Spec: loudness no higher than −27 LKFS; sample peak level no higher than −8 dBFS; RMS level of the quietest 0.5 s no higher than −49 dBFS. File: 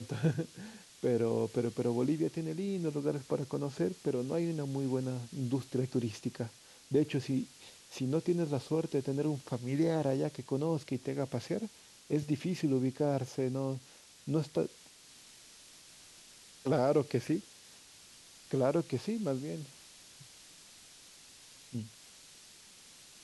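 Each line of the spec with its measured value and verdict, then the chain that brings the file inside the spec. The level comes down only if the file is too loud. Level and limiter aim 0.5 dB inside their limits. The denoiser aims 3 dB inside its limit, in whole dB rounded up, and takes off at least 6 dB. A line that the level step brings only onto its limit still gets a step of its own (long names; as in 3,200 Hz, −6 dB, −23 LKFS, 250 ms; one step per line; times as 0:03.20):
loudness −34.5 LKFS: in spec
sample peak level −16.5 dBFS: in spec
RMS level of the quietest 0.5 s −57 dBFS: in spec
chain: no processing needed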